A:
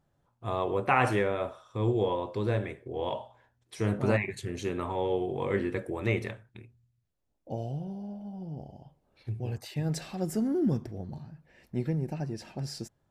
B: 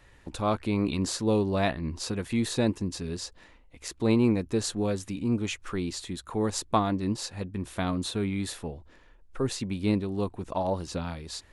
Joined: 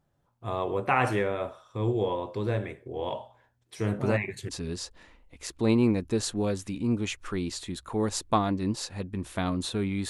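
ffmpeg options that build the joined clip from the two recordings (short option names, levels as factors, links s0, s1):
-filter_complex "[0:a]apad=whole_dur=10.09,atrim=end=10.09,atrim=end=4.492[s0];[1:a]atrim=start=2.898:end=8.5[s1];[s0][s1]acrossfade=d=0.004:c1=hsin:c2=hsin"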